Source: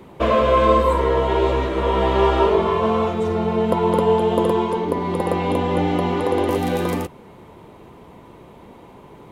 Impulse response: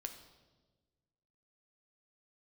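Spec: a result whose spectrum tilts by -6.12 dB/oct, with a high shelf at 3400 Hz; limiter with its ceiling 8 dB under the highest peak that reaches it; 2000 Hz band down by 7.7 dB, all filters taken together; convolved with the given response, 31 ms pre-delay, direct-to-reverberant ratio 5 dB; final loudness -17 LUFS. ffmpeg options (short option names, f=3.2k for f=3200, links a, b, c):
-filter_complex "[0:a]equalizer=f=2k:t=o:g=-7.5,highshelf=f=3.4k:g=-8,alimiter=limit=-12dB:level=0:latency=1,asplit=2[a][b];[1:a]atrim=start_sample=2205,adelay=31[c];[b][c]afir=irnorm=-1:irlink=0,volume=-2dB[d];[a][d]amix=inputs=2:normalize=0,volume=3.5dB"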